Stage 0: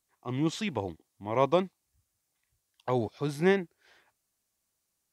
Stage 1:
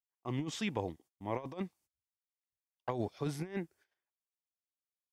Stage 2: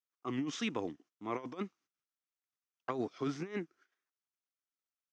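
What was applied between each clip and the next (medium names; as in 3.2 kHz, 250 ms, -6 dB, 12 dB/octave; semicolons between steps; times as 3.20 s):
gate -56 dBFS, range -26 dB; band-stop 4 kHz, Q 12; compressor with a negative ratio -29 dBFS, ratio -0.5; trim -6 dB
median filter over 5 samples; wow and flutter 110 cents; cabinet simulation 210–7300 Hz, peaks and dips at 290 Hz +4 dB, 570 Hz -7 dB, 860 Hz -7 dB, 1.3 kHz +8 dB, 4.2 kHz -3 dB, 6.1 kHz +6 dB; trim +1.5 dB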